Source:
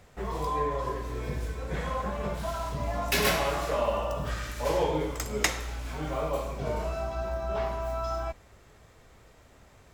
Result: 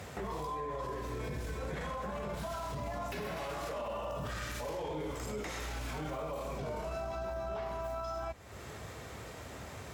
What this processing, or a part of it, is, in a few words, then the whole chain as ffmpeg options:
podcast mastering chain: -af "highpass=f=65:w=0.5412,highpass=f=65:w=1.3066,deesser=0.9,acompressor=threshold=-49dB:ratio=3,alimiter=level_in=18dB:limit=-24dB:level=0:latency=1:release=13,volume=-18dB,volume=11.5dB" -ar 48000 -c:a libmp3lame -b:a 96k

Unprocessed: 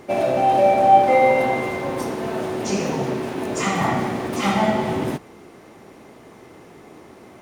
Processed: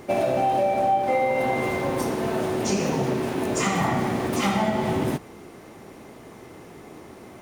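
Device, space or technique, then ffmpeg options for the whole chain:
ASMR close-microphone chain: -af "lowshelf=f=140:g=4.5,acompressor=threshold=-19dB:ratio=6,highshelf=f=8.7k:g=5.5"

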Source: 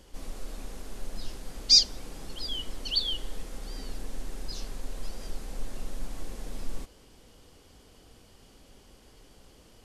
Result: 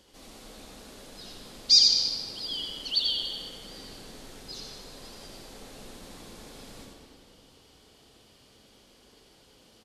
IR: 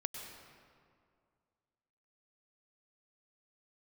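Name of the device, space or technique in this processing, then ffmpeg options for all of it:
PA in a hall: -filter_complex "[0:a]highpass=f=150:p=1,equalizer=f=3.9k:t=o:w=0.78:g=6,aecho=1:1:85:0.562[a];[1:a]atrim=start_sample=2205[b];[a][b]afir=irnorm=-1:irlink=0,volume=-2dB"

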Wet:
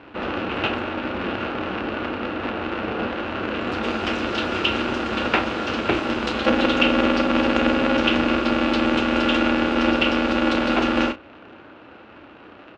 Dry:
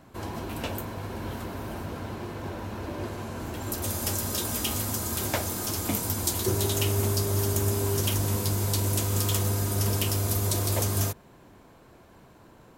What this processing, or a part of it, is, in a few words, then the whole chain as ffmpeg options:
ring modulator pedal into a guitar cabinet: -filter_complex "[0:a]aeval=exprs='val(0)*sgn(sin(2*PI*140*n/s))':c=same,highpass=88,equalizer=f=160:t=q:w=4:g=-7,equalizer=f=310:t=q:w=4:g=8,equalizer=f=580:t=q:w=4:g=3,equalizer=f=1.4k:t=q:w=4:g=9,equalizer=f=2.7k:t=q:w=4:g=10,lowpass=f=3.7k:w=0.5412,lowpass=f=3.7k:w=1.3066,asplit=2[a][b];[b]adelay=32,volume=-11dB[c];[a][c]amix=inputs=2:normalize=0,volume=6dB"

